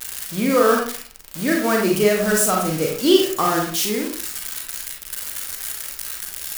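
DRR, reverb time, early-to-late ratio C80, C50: -1.0 dB, 0.50 s, 8.0 dB, 3.0 dB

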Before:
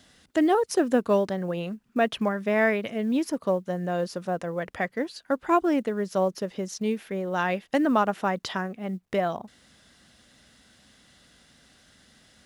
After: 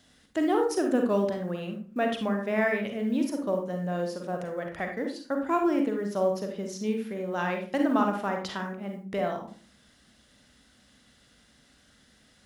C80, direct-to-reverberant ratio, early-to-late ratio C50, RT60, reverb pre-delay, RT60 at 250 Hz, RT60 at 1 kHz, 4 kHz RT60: 11.0 dB, 3.0 dB, 5.0 dB, 0.40 s, 38 ms, 0.70 s, 0.40 s, 0.25 s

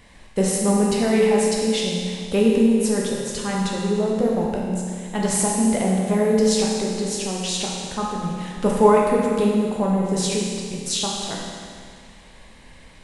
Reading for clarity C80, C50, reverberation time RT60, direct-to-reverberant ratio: 1.5 dB, 0.0 dB, 2.1 s, -2.5 dB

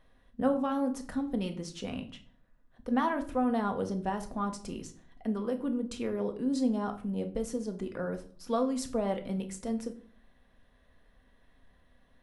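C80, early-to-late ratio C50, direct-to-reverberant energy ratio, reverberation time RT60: 18.0 dB, 13.0 dB, 5.5 dB, 0.50 s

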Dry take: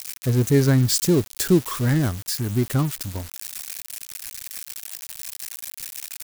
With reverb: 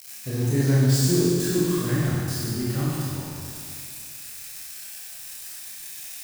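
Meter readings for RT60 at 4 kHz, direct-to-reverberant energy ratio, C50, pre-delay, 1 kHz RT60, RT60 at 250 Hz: 2.2 s, -8.5 dB, -4.0 dB, 23 ms, 2.2 s, 2.2 s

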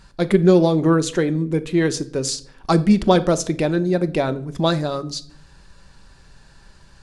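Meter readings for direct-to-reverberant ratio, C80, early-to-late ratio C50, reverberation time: 9.5 dB, 22.0 dB, 18.5 dB, 0.60 s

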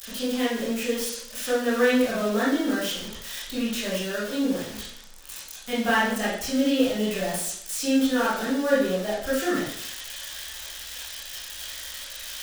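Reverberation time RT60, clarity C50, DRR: 0.70 s, 0.5 dB, -9.5 dB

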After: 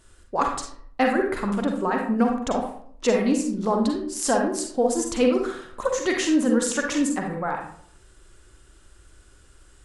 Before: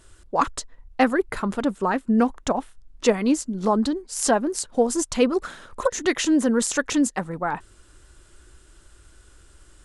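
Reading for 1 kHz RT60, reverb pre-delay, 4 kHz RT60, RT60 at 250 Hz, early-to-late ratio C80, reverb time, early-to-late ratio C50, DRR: 0.55 s, 39 ms, 0.35 s, 0.65 s, 8.5 dB, 0.60 s, 3.5 dB, 1.5 dB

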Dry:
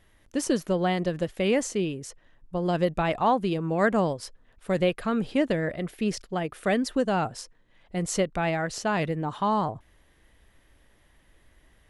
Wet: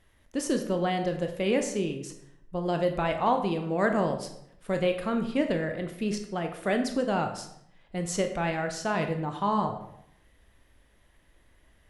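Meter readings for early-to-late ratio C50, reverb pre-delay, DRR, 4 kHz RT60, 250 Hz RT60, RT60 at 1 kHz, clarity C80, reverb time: 8.5 dB, 18 ms, 5.0 dB, 0.55 s, 0.80 s, 0.70 s, 11.0 dB, 0.70 s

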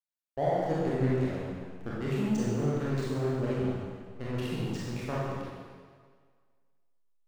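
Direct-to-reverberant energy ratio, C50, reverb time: -7.5 dB, -3.0 dB, 1.8 s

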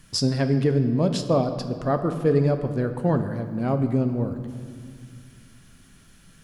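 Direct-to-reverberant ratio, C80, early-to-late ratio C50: 7.0 dB, 10.0 dB, 9.0 dB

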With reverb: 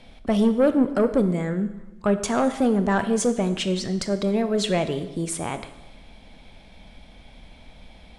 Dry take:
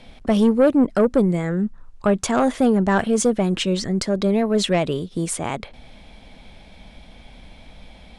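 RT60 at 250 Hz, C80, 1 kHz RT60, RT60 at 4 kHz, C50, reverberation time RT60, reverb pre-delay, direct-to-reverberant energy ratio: 1.0 s, 13.5 dB, 1.0 s, 0.95 s, 11.5 dB, 1.0 s, 23 ms, 9.5 dB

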